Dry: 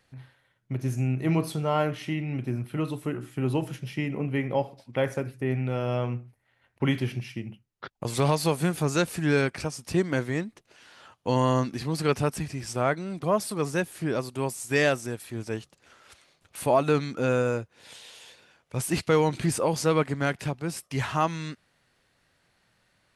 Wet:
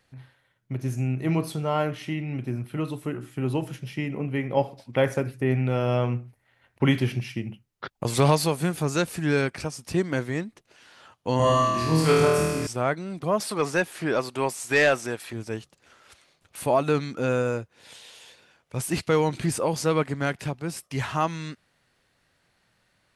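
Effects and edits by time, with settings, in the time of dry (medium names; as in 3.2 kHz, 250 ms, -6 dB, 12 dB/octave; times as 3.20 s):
4.57–8.45 s: gain +4 dB
11.37–12.67 s: flutter echo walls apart 4.3 m, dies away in 1.4 s
13.40–15.33 s: overdrive pedal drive 14 dB, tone 3.4 kHz, clips at -8.5 dBFS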